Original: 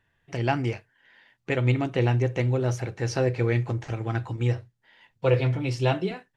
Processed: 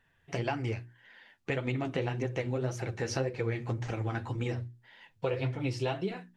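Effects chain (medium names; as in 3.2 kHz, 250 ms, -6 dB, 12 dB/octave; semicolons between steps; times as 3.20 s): flange 1.8 Hz, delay 3.6 ms, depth 9.3 ms, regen +31%; hum notches 60/120/180/240/300/360 Hz; compression 4:1, threshold -34 dBFS, peak gain reduction 10.5 dB; trim +4.5 dB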